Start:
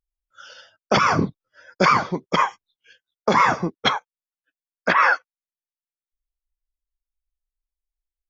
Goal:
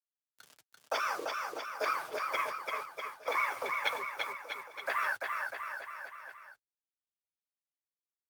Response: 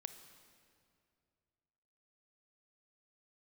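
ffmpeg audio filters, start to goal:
-filter_complex "[0:a]highpass=frequency=380:width=0.5412,highpass=frequency=380:width=1.3066,asettb=1/sr,asplit=3[link_01][link_02][link_03];[link_01]atrim=end=2.324[link_04];[link_02]atrim=start=2.32:end=4.88,asetpts=PTS-STARTPTS,afade=type=in:duration=0.004:curve=qsin,afade=type=out:start_time=2.556:duration=0.004:curve=qsin,equalizer=frequency=2200:width_type=o:width=0.29:gain=11[link_05];[link_03]atrim=start=4.876[link_06];[link_04][link_05]acrossfade=duration=0.004:curve1=hsin:curve2=qsin[link_07];[link_07][link_06]acrossfade=duration=0.004:curve1=qsin:curve2=hsin,bandreject=frequency=650:width=12,acompressor=threshold=-19dB:ratio=2,acrusher=bits=5:mix=0:aa=0.000001,afreqshift=68,flanger=delay=5.8:depth=2:regen=-46:speed=1.5:shape=sinusoidal,aeval=exprs='0.335*(cos(1*acos(clip(val(0)/0.335,-1,1)))-cos(1*PI/2))+0.0299*(cos(3*acos(clip(val(0)/0.335,-1,1)))-cos(3*PI/2))+0.00422*(cos(5*acos(clip(val(0)/0.335,-1,1)))-cos(5*PI/2))':channel_layout=same,aecho=1:1:340|646|921.4|1169|1392:0.631|0.398|0.251|0.158|0.1,volume=-6dB" -ar 48000 -c:a libopus -b:a 48k

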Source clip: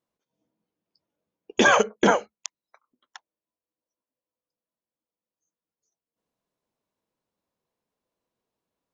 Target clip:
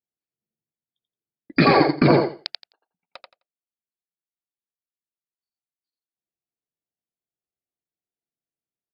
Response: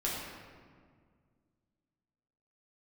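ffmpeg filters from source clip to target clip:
-af "agate=range=-19dB:threshold=-54dB:ratio=16:detection=peak,equalizer=frequency=1500:width=7.3:gain=-10,asetrate=31183,aresample=44100,atempo=1.41421,aecho=1:1:86|172|258:0.631|0.114|0.0204,volume=2.5dB"

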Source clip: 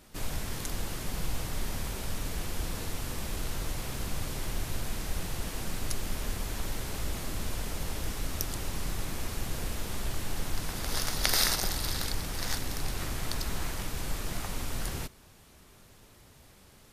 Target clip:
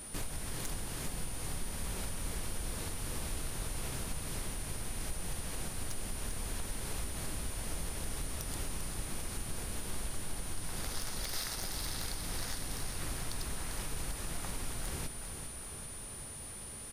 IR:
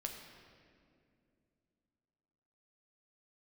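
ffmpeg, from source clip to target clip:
-filter_complex "[0:a]acompressor=threshold=-40dB:ratio=12,volume=35dB,asoftclip=hard,volume=-35dB,aeval=exprs='val(0)+0.00282*sin(2*PI*9400*n/s)':channel_layout=same,asplit=2[link_01][link_02];[link_02]aecho=0:1:396|792|1188|1584|1980|2376|2772:0.398|0.231|0.134|0.0777|0.0451|0.0261|0.0152[link_03];[link_01][link_03]amix=inputs=2:normalize=0,volume=5.5dB"

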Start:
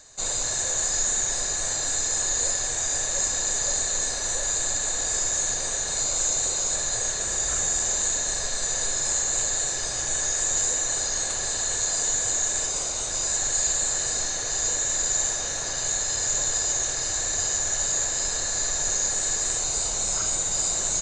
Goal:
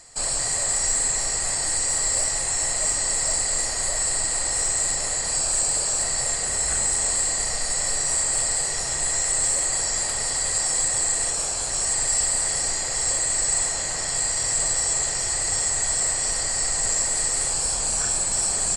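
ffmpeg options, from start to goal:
ffmpeg -i in.wav -filter_complex "[0:a]asplit=2[link_01][link_02];[link_02]volume=19dB,asoftclip=hard,volume=-19dB,volume=-11dB[link_03];[link_01][link_03]amix=inputs=2:normalize=0,asetrate=49392,aresample=44100" out.wav

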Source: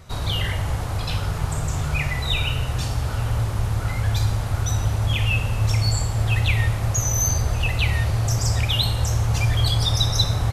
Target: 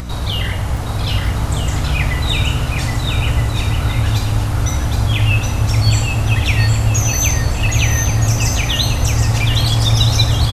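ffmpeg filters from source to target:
ffmpeg -i in.wav -af "acompressor=mode=upward:threshold=-27dB:ratio=2.5,aeval=exprs='val(0)+0.0282*(sin(2*PI*60*n/s)+sin(2*PI*2*60*n/s)/2+sin(2*PI*3*60*n/s)/3+sin(2*PI*4*60*n/s)/4+sin(2*PI*5*60*n/s)/5)':channel_layout=same,aecho=1:1:770|1270|1596|1807|1945:0.631|0.398|0.251|0.158|0.1,volume=4dB" out.wav

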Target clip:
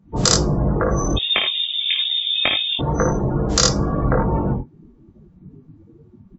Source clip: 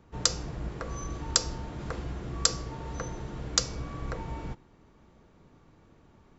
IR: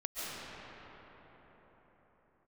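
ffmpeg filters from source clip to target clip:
-filter_complex "[0:a]aecho=1:1:55|80:0.501|0.398,asettb=1/sr,asplit=3[link_01][link_02][link_03];[link_01]atrim=end=1.164[link_04];[link_02]atrim=start=1.16:end=2.79,asetpts=PTS-STARTPTS,afade=type=in:duration=0.004:curve=qsin,afade=type=out:start_time=1.626:duration=0.004:curve=qsin,lowpass=frequency=3100:width_type=q:width=0.5098,lowpass=frequency=3100:width_type=q:width=0.6013,lowpass=frequency=3100:width_type=q:width=0.9,lowpass=frequency=3100:width_type=q:width=2.563,afreqshift=-3700[link_05];[link_03]atrim=start=2.786[link_06];[link_04][link_05]acrossfade=duration=0.004:curve1=hsin:curve2=qsin[link_07];[link_07][link_06]acrossfade=duration=0.004:curve1=qsin:curve2=hsin,flanger=delay=19.5:depth=2.1:speed=2.3,acrossover=split=100|1200|1600[link_08][link_09][link_10][link_11];[link_09]acontrast=26[link_12];[link_08][link_12][link_10][link_11]amix=inputs=4:normalize=0,afftdn=noise_reduction=25:noise_floor=-44,alimiter=level_in=16.5dB:limit=-1dB:release=50:level=0:latency=1" -ar 32000 -c:a wmav2 -b:a 64k

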